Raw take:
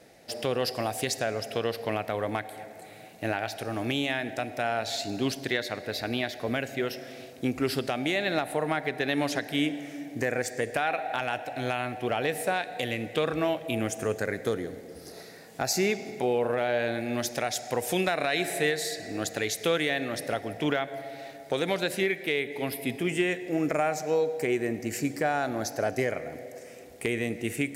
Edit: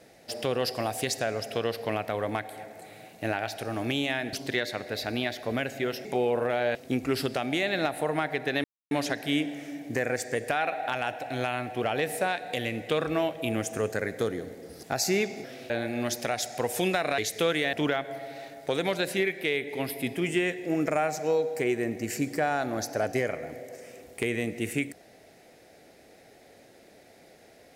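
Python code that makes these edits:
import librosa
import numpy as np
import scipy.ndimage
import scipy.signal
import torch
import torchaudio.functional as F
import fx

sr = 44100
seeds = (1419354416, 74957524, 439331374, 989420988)

y = fx.edit(x, sr, fx.cut(start_s=4.33, length_s=0.97),
    fx.swap(start_s=7.02, length_s=0.26, other_s=16.13, other_length_s=0.7),
    fx.insert_silence(at_s=9.17, length_s=0.27),
    fx.cut(start_s=15.09, length_s=0.43),
    fx.cut(start_s=18.31, length_s=1.12),
    fx.cut(start_s=19.98, length_s=0.58), tone=tone)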